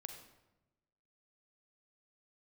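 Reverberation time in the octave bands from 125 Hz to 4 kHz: 1.3, 1.3, 1.1, 0.95, 0.80, 0.65 seconds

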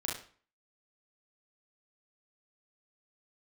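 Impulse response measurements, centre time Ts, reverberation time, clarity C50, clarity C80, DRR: 42 ms, 0.45 s, 3.5 dB, 10.5 dB, −4.0 dB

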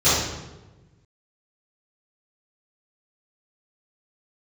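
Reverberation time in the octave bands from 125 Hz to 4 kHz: 1.8, 1.5, 1.3, 1.0, 0.85, 0.75 seconds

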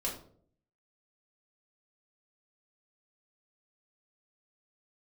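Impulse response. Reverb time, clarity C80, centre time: 0.55 s, 11.5 dB, 27 ms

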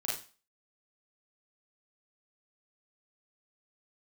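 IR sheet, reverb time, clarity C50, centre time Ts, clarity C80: 0.35 s, 2.5 dB, 42 ms, 9.5 dB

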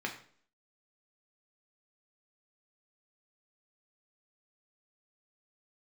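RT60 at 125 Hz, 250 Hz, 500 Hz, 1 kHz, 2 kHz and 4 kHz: 0.50, 0.60, 0.55, 0.50, 0.45, 0.45 seconds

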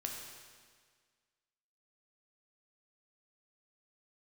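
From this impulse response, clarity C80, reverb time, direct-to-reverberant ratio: 4.0 dB, 1.7 s, 0.0 dB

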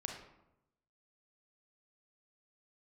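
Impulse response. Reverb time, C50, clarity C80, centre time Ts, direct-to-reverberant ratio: 0.90 s, 4.5 dB, 7.5 dB, 35 ms, 1.5 dB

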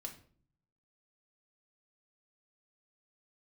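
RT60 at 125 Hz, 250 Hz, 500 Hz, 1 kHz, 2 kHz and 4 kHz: 1.1, 0.80, 0.55, 0.45, 0.40, 0.35 seconds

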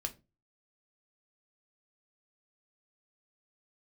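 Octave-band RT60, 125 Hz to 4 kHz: 0.45, 0.35, 0.30, 0.25, 0.20, 0.20 seconds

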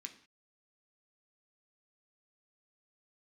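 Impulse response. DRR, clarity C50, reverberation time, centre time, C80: 4.0 dB, 12.5 dB, non-exponential decay, 10 ms, 16.0 dB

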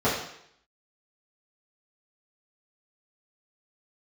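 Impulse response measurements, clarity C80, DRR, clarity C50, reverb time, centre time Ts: 7.0 dB, −11.5 dB, 4.0 dB, 0.70 s, 44 ms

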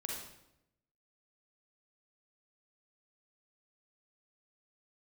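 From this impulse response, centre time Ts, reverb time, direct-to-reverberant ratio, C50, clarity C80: 56 ms, 0.85 s, −2.0 dB, 0.0 dB, 5.0 dB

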